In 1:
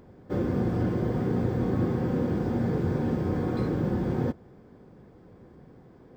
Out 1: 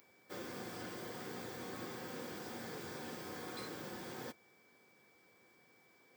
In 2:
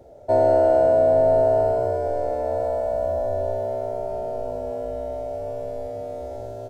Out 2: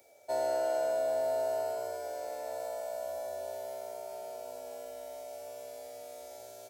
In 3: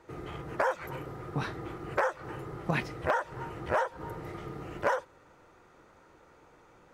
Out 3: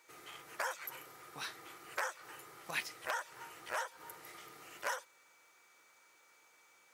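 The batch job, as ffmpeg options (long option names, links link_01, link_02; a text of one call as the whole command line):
ffmpeg -i in.wav -af "aderivative,aeval=exprs='val(0)+0.000158*sin(2*PI*2300*n/s)':channel_layout=same,volume=7dB" out.wav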